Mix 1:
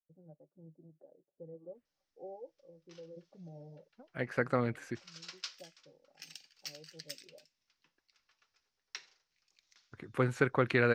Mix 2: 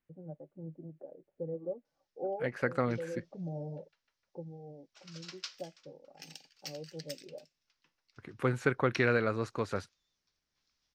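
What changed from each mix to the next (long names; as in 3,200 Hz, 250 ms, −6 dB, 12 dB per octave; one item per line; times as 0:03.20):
first voice +11.0 dB
second voice: entry −1.75 s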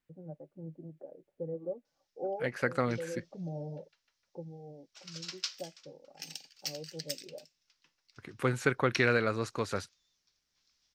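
master: add high-shelf EQ 3,000 Hz +9 dB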